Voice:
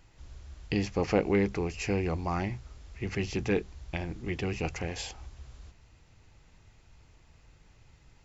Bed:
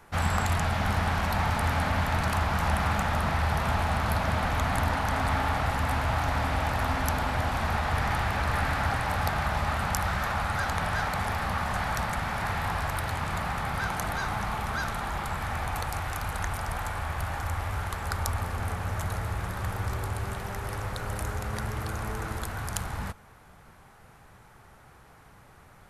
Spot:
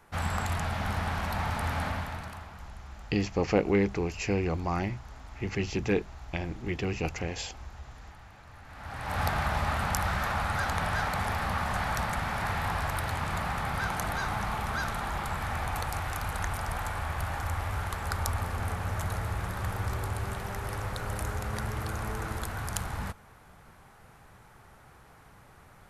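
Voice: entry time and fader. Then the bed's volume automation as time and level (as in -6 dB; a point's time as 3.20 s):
2.40 s, +1.0 dB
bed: 1.87 s -4.5 dB
2.74 s -24.5 dB
8.62 s -24.5 dB
9.20 s -1 dB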